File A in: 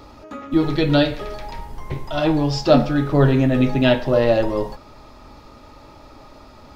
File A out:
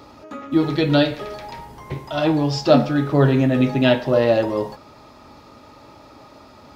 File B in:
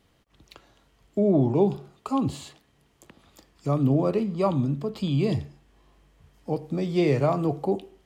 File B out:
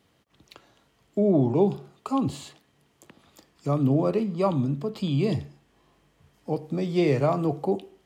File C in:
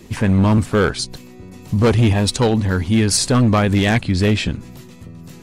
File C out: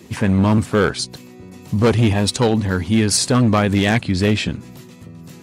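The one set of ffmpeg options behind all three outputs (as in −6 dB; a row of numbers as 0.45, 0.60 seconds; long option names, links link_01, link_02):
-af "highpass=94"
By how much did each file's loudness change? 0.0, 0.0, −0.5 LU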